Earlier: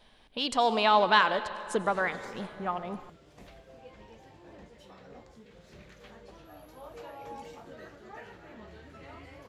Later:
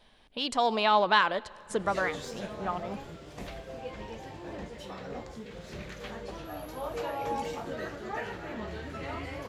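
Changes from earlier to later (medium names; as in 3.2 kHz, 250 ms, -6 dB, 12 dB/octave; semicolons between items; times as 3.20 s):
speech: send -11.0 dB; background +10.5 dB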